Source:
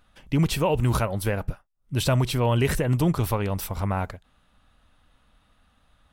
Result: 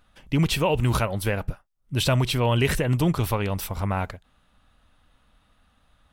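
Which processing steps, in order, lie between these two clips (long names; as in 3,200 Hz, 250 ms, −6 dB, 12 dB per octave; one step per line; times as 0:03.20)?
dynamic equaliser 2,900 Hz, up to +5 dB, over −42 dBFS, Q 0.97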